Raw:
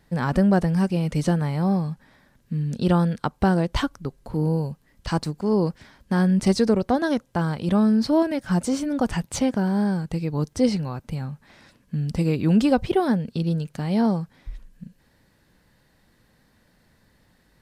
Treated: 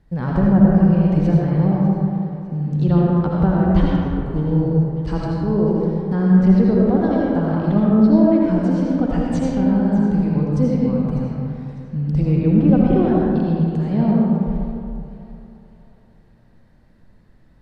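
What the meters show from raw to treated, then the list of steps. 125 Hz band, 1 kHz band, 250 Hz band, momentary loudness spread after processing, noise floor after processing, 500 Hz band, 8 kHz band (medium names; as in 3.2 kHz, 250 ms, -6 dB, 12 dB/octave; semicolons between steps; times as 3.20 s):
+7.0 dB, +1.0 dB, +6.5 dB, 10 LU, -51 dBFS, +4.0 dB, under -10 dB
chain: low-pass that closes with the level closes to 1.9 kHz, closed at -14.5 dBFS; tilt EQ -2.5 dB/octave; thinning echo 601 ms, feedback 45%, level -16 dB; algorithmic reverb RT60 2.3 s, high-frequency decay 0.5×, pre-delay 40 ms, DRR -4 dB; trim -5 dB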